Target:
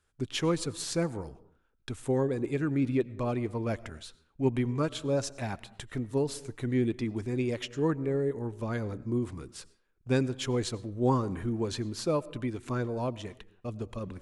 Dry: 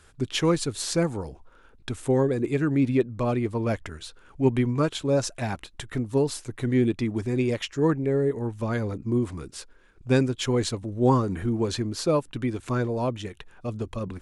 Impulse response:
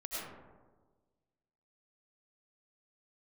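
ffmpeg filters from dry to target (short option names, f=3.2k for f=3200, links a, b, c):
-filter_complex "[0:a]agate=range=-14dB:threshold=-44dB:ratio=16:detection=peak,asplit=2[a][b];[1:a]atrim=start_sample=2205,afade=t=out:st=0.35:d=0.01,atrim=end_sample=15876[c];[b][c]afir=irnorm=-1:irlink=0,volume=-20dB[d];[a][d]amix=inputs=2:normalize=0,volume=-6dB"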